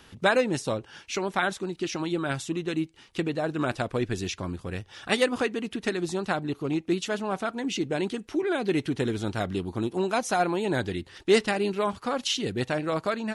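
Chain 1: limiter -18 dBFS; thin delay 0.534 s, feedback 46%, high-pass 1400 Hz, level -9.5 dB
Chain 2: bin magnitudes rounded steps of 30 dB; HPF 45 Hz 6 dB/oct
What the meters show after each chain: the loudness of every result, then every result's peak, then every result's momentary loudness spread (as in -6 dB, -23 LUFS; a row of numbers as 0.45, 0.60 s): -30.0, -29.0 LUFS; -17.0, -9.0 dBFS; 5, 8 LU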